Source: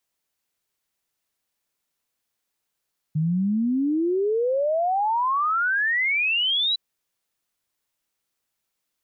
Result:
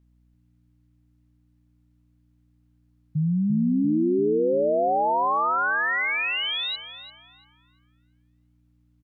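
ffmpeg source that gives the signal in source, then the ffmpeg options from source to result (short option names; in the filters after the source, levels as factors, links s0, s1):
-f lavfi -i "aevalsrc='0.106*clip(min(t,3.61-t)/0.01,0,1)*sin(2*PI*150*3.61/log(4000/150)*(exp(log(4000/150)*t/3.61)-1))':d=3.61:s=44100"
-filter_complex "[0:a]highshelf=f=3500:g=-12,aeval=exprs='val(0)+0.001*(sin(2*PI*60*n/s)+sin(2*PI*2*60*n/s)/2+sin(2*PI*3*60*n/s)/3+sin(2*PI*4*60*n/s)/4+sin(2*PI*5*60*n/s)/5)':c=same,asplit=2[s0][s1];[s1]adelay=343,lowpass=f=1500:p=1,volume=0.501,asplit=2[s2][s3];[s3]adelay=343,lowpass=f=1500:p=1,volume=0.54,asplit=2[s4][s5];[s5]adelay=343,lowpass=f=1500:p=1,volume=0.54,asplit=2[s6][s7];[s7]adelay=343,lowpass=f=1500:p=1,volume=0.54,asplit=2[s8][s9];[s9]adelay=343,lowpass=f=1500:p=1,volume=0.54,asplit=2[s10][s11];[s11]adelay=343,lowpass=f=1500:p=1,volume=0.54,asplit=2[s12][s13];[s13]adelay=343,lowpass=f=1500:p=1,volume=0.54[s14];[s2][s4][s6][s8][s10][s12][s14]amix=inputs=7:normalize=0[s15];[s0][s15]amix=inputs=2:normalize=0"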